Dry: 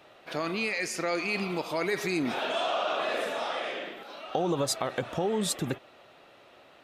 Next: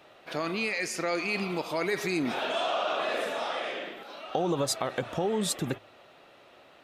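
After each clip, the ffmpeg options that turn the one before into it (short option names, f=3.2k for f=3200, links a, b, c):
-af "bandreject=f=52.71:t=h:w=4,bandreject=f=105.42:t=h:w=4"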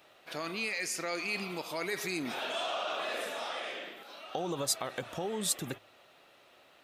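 -af "highshelf=f=2.8k:g=-10,crystalizer=i=7:c=0,volume=-8dB"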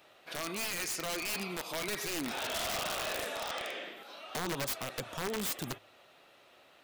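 -af "aeval=exprs='(mod(26.6*val(0)+1,2)-1)/26.6':c=same"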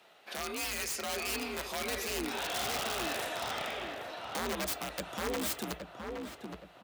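-filter_complex "[0:a]afreqshift=54,asplit=2[a][b];[b]adelay=818,lowpass=f=1.6k:p=1,volume=-4dB,asplit=2[c][d];[d]adelay=818,lowpass=f=1.6k:p=1,volume=0.44,asplit=2[e][f];[f]adelay=818,lowpass=f=1.6k:p=1,volume=0.44,asplit=2[g][h];[h]adelay=818,lowpass=f=1.6k:p=1,volume=0.44,asplit=2[i][j];[j]adelay=818,lowpass=f=1.6k:p=1,volume=0.44,asplit=2[k][l];[l]adelay=818,lowpass=f=1.6k:p=1,volume=0.44[m];[a][c][e][g][i][k][m]amix=inputs=7:normalize=0"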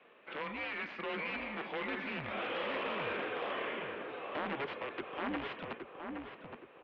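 -af "highpass=f=440:t=q:w=0.5412,highpass=f=440:t=q:w=1.307,lowpass=f=3.1k:t=q:w=0.5176,lowpass=f=3.1k:t=q:w=0.7071,lowpass=f=3.1k:t=q:w=1.932,afreqshift=-200"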